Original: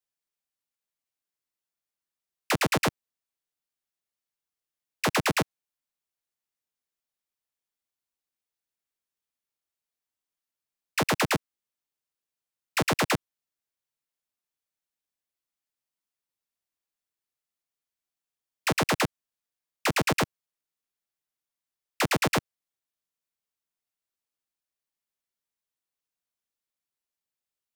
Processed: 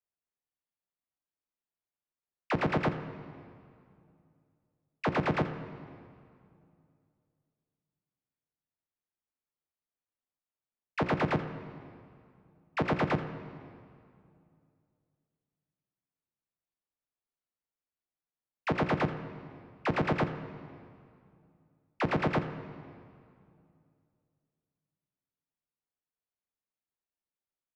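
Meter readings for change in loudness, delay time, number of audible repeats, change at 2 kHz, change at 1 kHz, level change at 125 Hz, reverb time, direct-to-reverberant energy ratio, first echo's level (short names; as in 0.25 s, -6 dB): -5.0 dB, 84 ms, 1, -7.0 dB, -3.5 dB, +0.5 dB, 2.4 s, 9.5 dB, -15.0 dB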